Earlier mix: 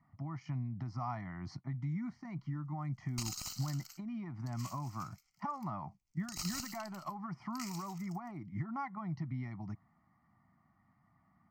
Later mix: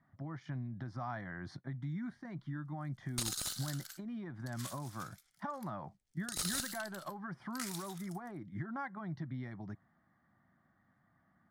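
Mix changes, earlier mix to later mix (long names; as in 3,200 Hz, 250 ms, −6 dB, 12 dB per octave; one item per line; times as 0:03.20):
speech −4.0 dB
master: remove phaser with its sweep stopped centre 2,400 Hz, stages 8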